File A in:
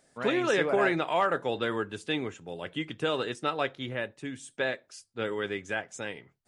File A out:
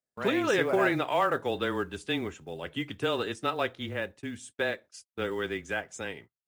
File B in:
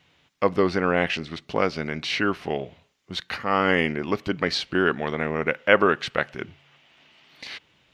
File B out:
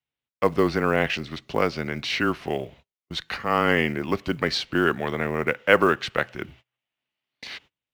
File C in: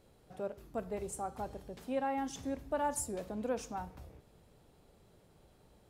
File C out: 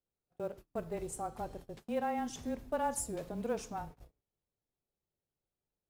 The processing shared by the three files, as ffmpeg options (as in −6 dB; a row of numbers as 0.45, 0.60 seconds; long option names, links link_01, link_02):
-af "afreqshift=-18,acrusher=bits=8:mode=log:mix=0:aa=0.000001,agate=range=-30dB:threshold=-48dB:ratio=16:detection=peak"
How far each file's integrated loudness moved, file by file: 0.0, 0.0, 0.0 LU